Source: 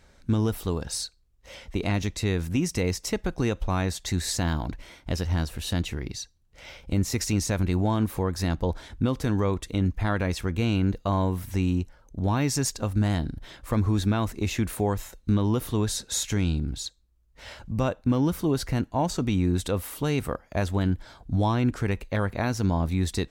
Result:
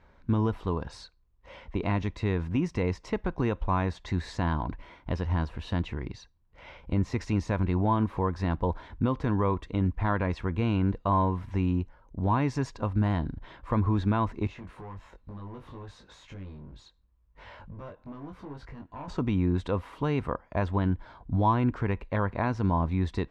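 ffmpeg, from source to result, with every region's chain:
-filter_complex "[0:a]asettb=1/sr,asplit=3[a][b][c];[a]atrim=end=14.474[d];[b]atrim=start=14.47:end=19.08,asetpts=PTS-STARTPTS,afade=t=in:d=0.004:c=qsin,afade=t=out:st=4.606:d=0.004:c=qsin,acompressor=threshold=-45dB:ratio=2:attack=3.2:release=140:knee=1:detection=peak,asoftclip=type=hard:threshold=-38dB,asplit=2[e][f];[f]adelay=21,volume=-4dB[g];[e][g]amix=inputs=2:normalize=0,atrim=end_sample=203301[h];[c]atrim=start=19.076[i];[d][h]acrossfade=d=0.004:c1=hsin:c2=qsin[j];[j][i]acrossfade=d=0.004:c1=qsin:c2=hsin,lowpass=2.4k,equalizer=f=1k:w=5:g=9.5,volume=-2dB"

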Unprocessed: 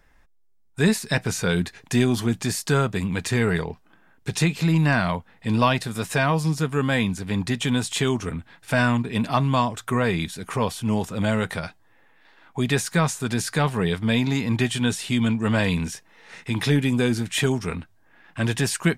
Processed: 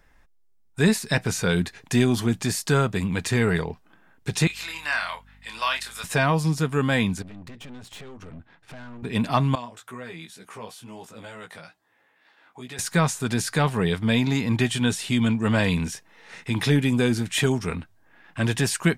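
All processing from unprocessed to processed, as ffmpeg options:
-filter_complex "[0:a]asettb=1/sr,asplit=3[a][b][c];[a]atrim=end=4.474[d];[b]atrim=start=4.47:end=6.04,asetpts=PTS-STARTPTS,afade=t=in:d=0.004:c=qsin,afade=t=out:st=1.566:d=0.004:c=qsin,highpass=1.3k,asplit=2[e][f];[f]adelay=27,volume=-6dB[g];[e][g]amix=inputs=2:normalize=0,atrim=end_sample=69237,aeval=exprs='val(0)+0.00251*(sin(2*PI*50*n/s)+sin(2*PI*2*50*n/s)/2+sin(2*PI*3*50*n/s)/3+sin(2*PI*4*50*n/s)/4+sin(2*PI*5*50*n/s)/5)':c=same[h];[c]atrim=start=6.036[i];[d][h]acrossfade=d=0.004:c1=hsin:c2=qsin[j];[j][i]acrossfade=d=0.004:c1=qsin:c2=hsin,asettb=1/sr,asplit=3[k][l][m];[k]atrim=end=7.224[n];[l]atrim=start=7.22:end=9.03,asetpts=PTS-STARTPTS,afade=t=in:d=0.004:c=qsin,afade=t=out:st=1.806:d=0.004:c=qsin,aemphasis=mode=reproduction:type=75fm,acompressor=threshold=-30dB:ratio=10:attack=3.2:release=140:knee=1:detection=peak,aeval=exprs='(tanh(79.4*val(0)+0.7)-tanh(0.7))/79.4':c=same[o];[m]atrim=start=9.026[p];[n][o]acrossfade=d=0.004:c1=hsin:c2=qsin[q];[q][p]acrossfade=d=0.004:c1=qsin:c2=hsin,asettb=1/sr,asplit=3[r][s][t];[r]atrim=end=9.554[u];[s]atrim=start=9.55:end=12.79,asetpts=PTS-STARTPTS,afade=t=in:d=0.004:c=qsin,afade=t=out:st=3.236:d=0.004:c=qsin,highpass=f=340:p=1,acompressor=threshold=-48dB:ratio=1.5:attack=3.2:release=140:knee=1:detection=peak,flanger=delay=15.5:depth=3.2:speed=2.2[v];[t]atrim=start=12.786[w];[u][v]acrossfade=d=0.004:c1=hsin:c2=qsin[x];[x][w]acrossfade=d=0.004:c1=qsin:c2=hsin"

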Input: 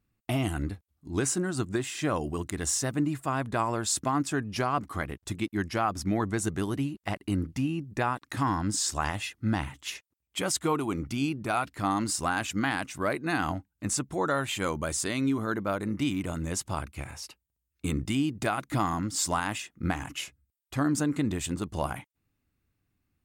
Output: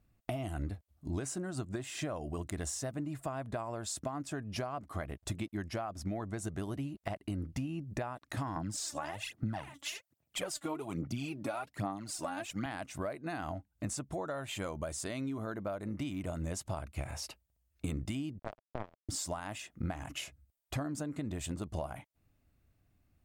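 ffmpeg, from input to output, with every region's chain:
-filter_complex "[0:a]asettb=1/sr,asplit=3[a][b][c];[a]atrim=end=8.564[d];[b]atrim=start=8.56:end=12.66,asetpts=PTS-STARTPTS,afade=t=in:d=0.004:c=qsin,afade=t=out:st=4.096:d=0.004:c=qsin,highpass=f=110:w=0.5412,highpass=f=110:w=1.3066,aphaser=in_gain=1:out_gain=1:delay=3.6:decay=0.67:speed=1.2:type=sinusoidal[e];[c]atrim=start=12.656[f];[d][e]acrossfade=d=0.004:c1=hsin:c2=qsin[g];[g][f]acrossfade=d=0.004:c1=qsin:c2=hsin,asettb=1/sr,asplit=3[h][i][j];[h]atrim=end=18.394[k];[i]atrim=start=18.39:end=19.09,asetpts=PTS-STARTPTS,afade=t=in:d=0.004:c=qsin,afade=t=out:st=0.696:d=0.004:c=qsin,asubboost=boost=3.5:cutoff=55,acrusher=bits=2:mix=0:aa=0.5,adynamicsmooth=sensitivity=0.5:basefreq=1.1k[l];[j]atrim=start=19.086[m];[k][l]acrossfade=d=0.004:c1=hsin:c2=qsin[n];[n][m]acrossfade=d=0.004:c1=qsin:c2=hsin,equalizer=f=640:t=o:w=0.48:g=10.5,acompressor=threshold=-38dB:ratio=6,lowshelf=f=120:g=8,volume=1dB"

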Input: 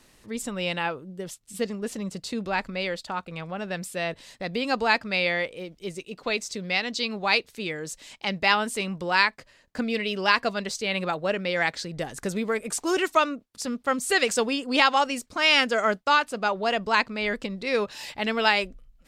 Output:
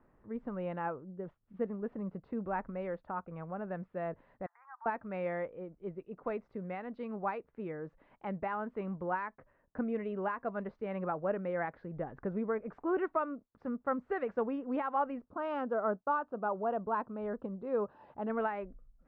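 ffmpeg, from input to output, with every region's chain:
-filter_complex "[0:a]asettb=1/sr,asplit=3[a][b][c];[a]atrim=end=4.464[d];[b]atrim=start=4.46:end=4.86,asetpts=PTS-STARTPTS,afade=t=in:d=0.004:c=qsin,afade=t=out:st=0.396:d=0.004:c=qsin,asuperpass=centerf=1300:order=12:qfactor=1.1,acompressor=threshold=-42dB:ratio=2.5:attack=3.2:release=140:knee=1:detection=peak[e];[c]atrim=start=4.856[f];[d][e]acrossfade=d=0.004:c1=hsin:c2=qsin[g];[g][f]acrossfade=d=0.004:c1=qsin:c2=hsin,asettb=1/sr,asplit=3[h][i][j];[h]atrim=end=15.244[k];[i]atrim=start=15.24:end=18.3,asetpts=PTS-STARTPTS,afade=t=in:d=0.004:c=qsin,afade=t=out:st=3.056:d=0.004:c=qsin,highpass=f=88:p=1,equalizer=f=2.1k:w=2.3:g=-14.5[l];[j]atrim=start=18.296[m];[k][l]acrossfade=d=0.004:c1=hsin:c2=qsin[n];[n][m]acrossfade=d=0.004:c1=qsin:c2=hsin,alimiter=limit=-13dB:level=0:latency=1:release=245,lowpass=f=1.4k:w=0.5412,lowpass=f=1.4k:w=1.3066,volume=-6.5dB"

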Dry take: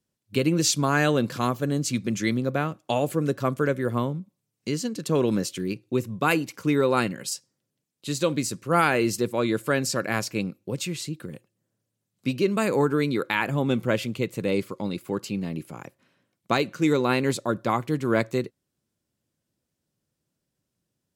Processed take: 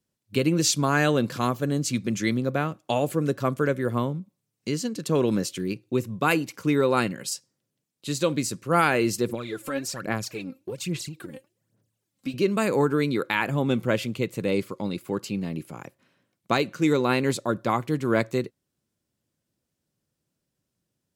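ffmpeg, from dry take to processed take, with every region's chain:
-filter_complex "[0:a]asettb=1/sr,asplit=3[a][b][c];[a]atrim=end=9.294[d];[b]atrim=start=9.29:end=12.34,asetpts=PTS-STARTPTS,afade=t=in:d=0.004:c=qsin,afade=t=out:st=3.046:d=0.004:c=qsin,acompressor=threshold=-36dB:ratio=2:attack=3.2:release=140:knee=1:detection=peak,aphaser=in_gain=1:out_gain=1:delay=3.8:decay=0.69:speed=1.2:type=sinusoidal[e];[c]atrim=start=12.336[f];[d][e]acrossfade=d=0.004:c1=hsin:c2=qsin[g];[g][f]acrossfade=d=0.004:c1=qsin:c2=hsin"

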